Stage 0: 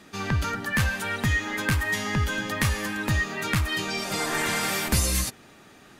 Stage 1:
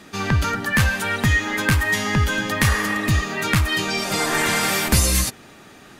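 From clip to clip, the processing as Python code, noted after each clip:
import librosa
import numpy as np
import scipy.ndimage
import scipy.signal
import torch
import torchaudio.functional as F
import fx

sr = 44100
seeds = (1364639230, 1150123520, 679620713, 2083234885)

y = fx.spec_repair(x, sr, seeds[0], start_s=2.69, length_s=0.52, low_hz=450.0, high_hz=2000.0, source='both')
y = y * 10.0 ** (6.0 / 20.0)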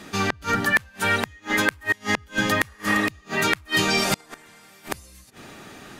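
y = fx.gate_flip(x, sr, shuts_db=-11.0, range_db=-32)
y = y * 10.0 ** (2.5 / 20.0)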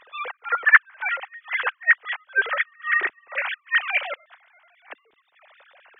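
y = fx.sine_speech(x, sr)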